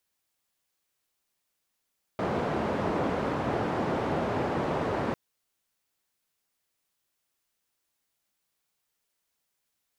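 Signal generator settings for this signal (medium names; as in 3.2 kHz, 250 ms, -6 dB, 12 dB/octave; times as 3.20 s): noise band 99–680 Hz, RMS -29 dBFS 2.95 s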